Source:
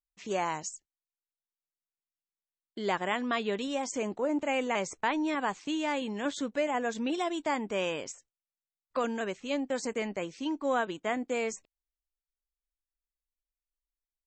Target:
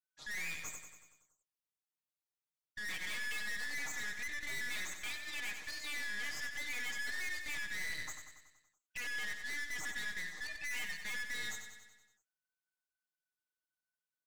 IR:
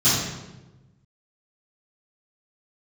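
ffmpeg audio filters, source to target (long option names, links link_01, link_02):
-filter_complex "[0:a]afftfilt=real='real(if(lt(b,272),68*(eq(floor(b/68),0)*3+eq(floor(b/68),1)*0+eq(floor(b/68),2)*1+eq(floor(b/68),3)*2)+mod(b,68),b),0)':imag='imag(if(lt(b,272),68*(eq(floor(b/68),0)*3+eq(floor(b/68),1)*0+eq(floor(b/68),2)*1+eq(floor(b/68),3)*2)+mod(b,68),b),0)':win_size=2048:overlap=0.75,aecho=1:1:6.5:0.85,aeval=exprs='(tanh(70.8*val(0)+0.65)-tanh(0.65))/70.8':channel_layout=same,asplit=2[link_01][link_02];[link_02]aecho=0:1:94|188|282|376|470|564|658:0.398|0.235|0.139|0.0818|0.0482|0.0285|0.0168[link_03];[link_01][link_03]amix=inputs=2:normalize=0,volume=-3dB"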